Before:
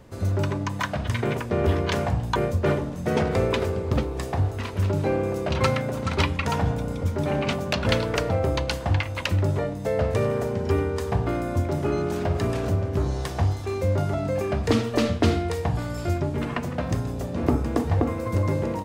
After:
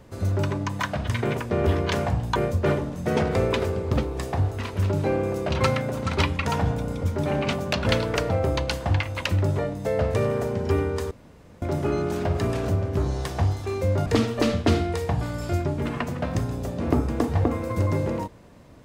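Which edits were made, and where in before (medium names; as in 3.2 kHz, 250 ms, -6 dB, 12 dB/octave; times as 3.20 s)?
11.11–11.62 s: room tone
14.06–14.62 s: delete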